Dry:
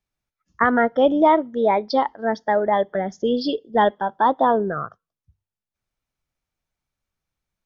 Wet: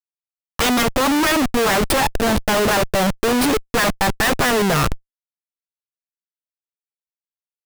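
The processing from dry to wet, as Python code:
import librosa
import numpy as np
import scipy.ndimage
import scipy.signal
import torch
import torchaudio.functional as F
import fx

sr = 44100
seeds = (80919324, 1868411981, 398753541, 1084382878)

y = fx.self_delay(x, sr, depth_ms=0.76)
y = fx.schmitt(y, sr, flips_db=-33.5)
y = F.gain(torch.from_numpy(y), 7.5).numpy()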